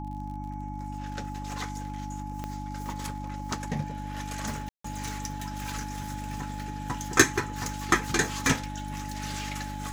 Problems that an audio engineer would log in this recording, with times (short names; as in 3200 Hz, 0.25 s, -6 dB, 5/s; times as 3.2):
crackle 43/s -41 dBFS
hum 50 Hz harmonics 6 -37 dBFS
tone 850 Hz -39 dBFS
2.44 pop -20 dBFS
4.69–4.84 gap 0.154 s